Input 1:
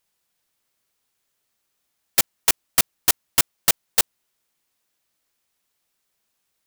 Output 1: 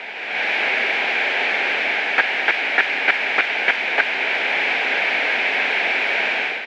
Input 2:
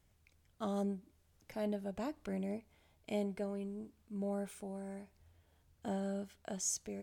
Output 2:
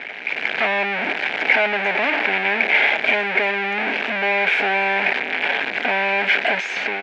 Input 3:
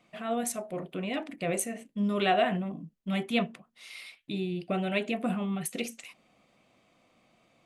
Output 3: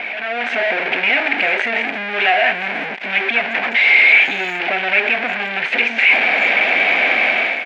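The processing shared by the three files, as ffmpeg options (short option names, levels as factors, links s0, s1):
-filter_complex "[0:a]aeval=exprs='val(0)+0.5*0.141*sgn(val(0))':c=same,equalizer=f=1400:w=1.4:g=-11,aeval=exprs='0.944*(cos(1*acos(clip(val(0)/0.944,-1,1)))-cos(1*PI/2))+0.0376*(cos(5*acos(clip(val(0)/0.944,-1,1)))-cos(5*PI/2))':c=same,acrossover=split=1000[s0][s1];[s0]acompressor=threshold=0.0251:ratio=6[s2];[s1]aeval=exprs='(mod(5.01*val(0)+1,2)-1)/5.01':c=same[s3];[s2][s3]amix=inputs=2:normalize=0,dynaudnorm=f=140:g=5:m=5.31,highpass=f=310:w=0.5412,highpass=f=310:w=1.3066,equalizer=f=330:t=q:w=4:g=-9,equalizer=f=520:t=q:w=4:g=-4,equalizer=f=780:t=q:w=4:g=3,equalizer=f=1100:t=q:w=4:g=-8,equalizer=f=1600:t=q:w=4:g=10,equalizer=f=2300:t=q:w=4:g=9,lowpass=f=2500:w=0.5412,lowpass=f=2500:w=1.3066,asplit=2[s4][s5];[s5]adelay=350,highpass=300,lowpass=3400,asoftclip=type=hard:threshold=0.316,volume=0.0794[s6];[s4][s6]amix=inputs=2:normalize=0"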